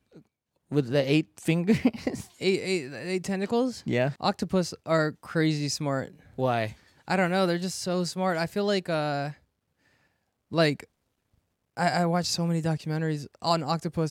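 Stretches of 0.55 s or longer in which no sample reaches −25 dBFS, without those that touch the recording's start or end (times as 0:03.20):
0:09.27–0:10.54
0:10.73–0:11.79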